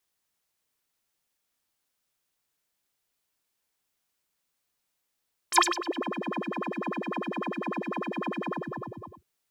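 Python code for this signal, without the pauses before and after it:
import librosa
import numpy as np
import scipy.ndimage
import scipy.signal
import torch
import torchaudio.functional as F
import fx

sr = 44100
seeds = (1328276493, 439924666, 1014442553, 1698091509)

y = fx.sub_patch_wobble(sr, seeds[0], note=65, wave='square', wave2='square', interval_st=19, level2_db=-7.0, sub_db=-28.0, noise_db=-15, kind='bandpass', cutoff_hz=260.0, q=11.0, env_oct=3.5, env_decay_s=0.56, env_sustain_pct=40, attack_ms=24.0, decay_s=0.23, sustain_db=-19, release_s=0.79, note_s=2.92, lfo_hz=10.0, wobble_oct=1.9)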